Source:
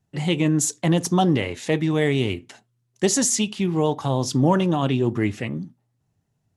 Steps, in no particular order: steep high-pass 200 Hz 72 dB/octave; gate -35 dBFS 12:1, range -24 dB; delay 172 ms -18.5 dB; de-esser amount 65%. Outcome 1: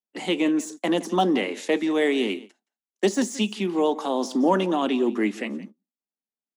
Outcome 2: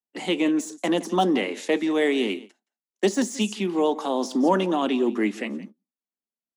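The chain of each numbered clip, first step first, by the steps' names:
de-esser > delay > gate > steep high-pass; delay > de-esser > gate > steep high-pass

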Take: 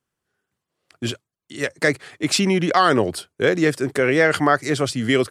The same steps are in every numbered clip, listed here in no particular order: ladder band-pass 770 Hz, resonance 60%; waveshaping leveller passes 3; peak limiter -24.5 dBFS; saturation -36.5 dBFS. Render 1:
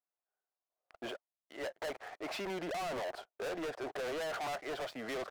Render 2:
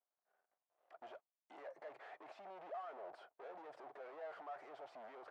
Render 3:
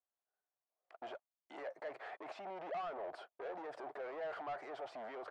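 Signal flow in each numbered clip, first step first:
ladder band-pass > peak limiter > waveshaping leveller > saturation; peak limiter > saturation > waveshaping leveller > ladder band-pass; peak limiter > waveshaping leveller > ladder band-pass > saturation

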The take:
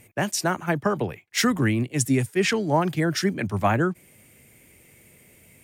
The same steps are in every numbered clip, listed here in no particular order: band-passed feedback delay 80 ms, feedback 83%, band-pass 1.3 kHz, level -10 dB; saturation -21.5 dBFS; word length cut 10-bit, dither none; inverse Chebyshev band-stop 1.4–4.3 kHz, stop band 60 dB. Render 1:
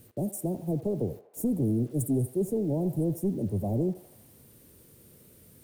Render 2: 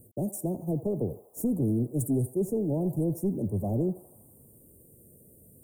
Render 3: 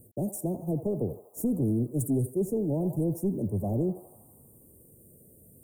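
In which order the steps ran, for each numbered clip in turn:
saturation > inverse Chebyshev band-stop > word length cut > band-passed feedback delay; saturation > band-passed feedback delay > word length cut > inverse Chebyshev band-stop; band-passed feedback delay > saturation > word length cut > inverse Chebyshev band-stop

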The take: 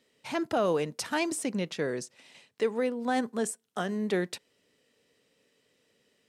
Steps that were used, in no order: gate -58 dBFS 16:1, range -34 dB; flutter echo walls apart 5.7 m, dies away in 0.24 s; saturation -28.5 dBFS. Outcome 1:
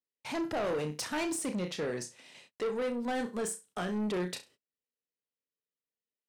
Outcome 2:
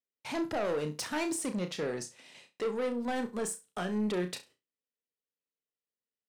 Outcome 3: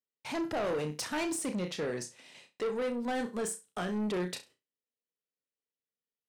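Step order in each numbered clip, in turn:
flutter echo > gate > saturation; gate > saturation > flutter echo; gate > flutter echo > saturation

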